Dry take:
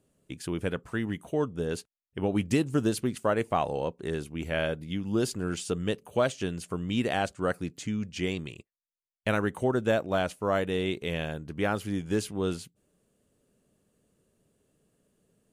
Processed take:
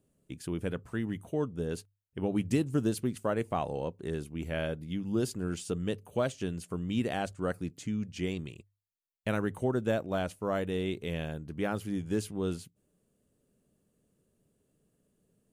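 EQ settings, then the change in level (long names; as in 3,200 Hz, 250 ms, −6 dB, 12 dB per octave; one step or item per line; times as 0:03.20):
low-shelf EQ 430 Hz +6.5 dB
high-shelf EQ 10,000 Hz +7 dB
mains-hum notches 50/100 Hz
−7.0 dB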